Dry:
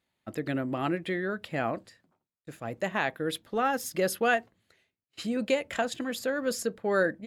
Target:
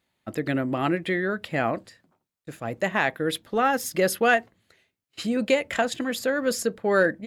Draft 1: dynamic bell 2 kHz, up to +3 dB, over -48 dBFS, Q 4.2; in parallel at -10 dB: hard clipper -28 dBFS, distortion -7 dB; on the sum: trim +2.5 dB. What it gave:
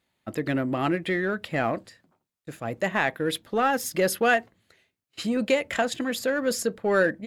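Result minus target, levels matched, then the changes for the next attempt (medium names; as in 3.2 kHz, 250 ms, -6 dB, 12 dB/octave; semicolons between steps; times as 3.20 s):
hard clipper: distortion +18 dB
change: hard clipper -17 dBFS, distortion -25 dB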